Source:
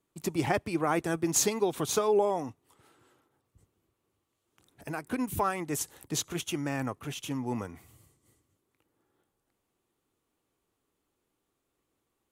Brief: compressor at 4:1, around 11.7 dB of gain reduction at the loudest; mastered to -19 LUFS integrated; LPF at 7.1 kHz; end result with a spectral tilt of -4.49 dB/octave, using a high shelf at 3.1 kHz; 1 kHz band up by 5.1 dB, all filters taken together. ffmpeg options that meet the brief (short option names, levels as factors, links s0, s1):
-af "lowpass=7100,equalizer=f=1000:t=o:g=7,highshelf=f=3100:g=-4,acompressor=threshold=0.02:ratio=4,volume=9.44"